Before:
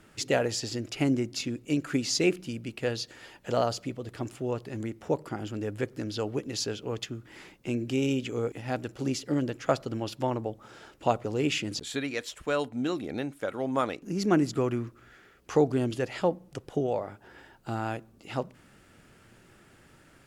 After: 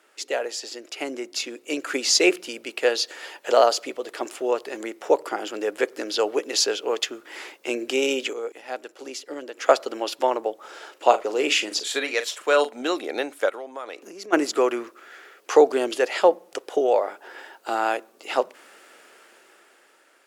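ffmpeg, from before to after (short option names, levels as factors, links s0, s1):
-filter_complex "[0:a]asettb=1/sr,asplit=3[s0][s1][s2];[s0]atrim=end=10.924[s3];[s1]atrim=start=10.92:end=12.83,asetpts=PTS-STARTPTS,afade=t=in:d=0.004:c=qsin,afade=t=out:st=1.906:d=0.004:c=qsin,asplit=2[s4][s5];[s5]adelay=41,volume=0.282[s6];[s4][s6]amix=inputs=2:normalize=0,atrim=end_sample=84231[s7];[s2]atrim=start=12.826[s8];[s3][s7]acrossfade=d=0.004:c1=hsin:c2=qsin[s9];[s9][s8]acrossfade=d=0.004:c1=qsin:c2=hsin,asplit=3[s10][s11][s12];[s10]afade=t=out:st=13.48:d=0.02[s13];[s11]acompressor=threshold=0.0112:ratio=10:attack=3.2:release=140:knee=1:detection=peak,afade=t=in:st=13.48:d=0.02,afade=t=out:st=14.32:d=0.02[s14];[s12]afade=t=in:st=14.32:d=0.02[s15];[s13][s14][s15]amix=inputs=3:normalize=0,asplit=3[s16][s17][s18];[s16]atrim=end=8.332[s19];[s17]atrim=start=8.328:end=9.572,asetpts=PTS-STARTPTS,volume=0.355[s20];[s18]atrim=start=9.568[s21];[s19][s20]acrossfade=d=0.004:c1=hsin:c2=hsin[s22];[s22][s21]acrossfade=d=0.004:c1=hsin:c2=hsin,highpass=f=400:w=0.5412,highpass=f=400:w=1.3066,dynaudnorm=f=270:g=11:m=3.76"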